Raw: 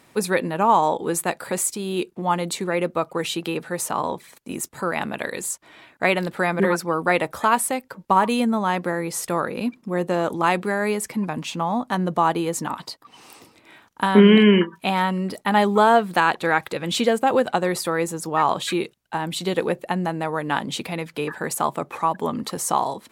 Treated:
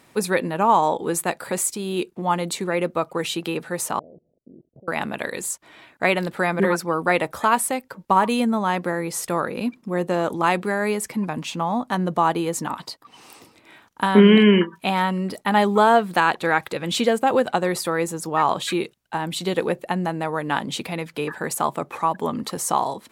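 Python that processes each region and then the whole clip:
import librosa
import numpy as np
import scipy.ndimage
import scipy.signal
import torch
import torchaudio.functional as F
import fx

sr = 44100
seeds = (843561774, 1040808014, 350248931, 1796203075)

y = fx.chain(x, sr, fx.steep_lowpass(hz=670.0, slope=72),
    fx.level_steps(step_db=23), at=(3.99, 4.88))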